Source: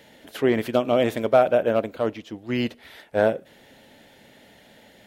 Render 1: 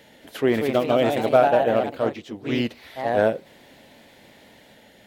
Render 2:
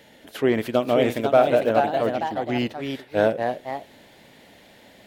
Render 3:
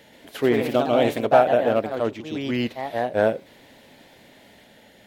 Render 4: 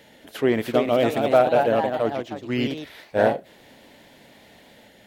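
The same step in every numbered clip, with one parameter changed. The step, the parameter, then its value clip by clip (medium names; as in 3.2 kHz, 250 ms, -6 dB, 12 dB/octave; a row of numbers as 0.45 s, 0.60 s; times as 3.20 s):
ever faster or slower copies, time: 233 ms, 578 ms, 131 ms, 362 ms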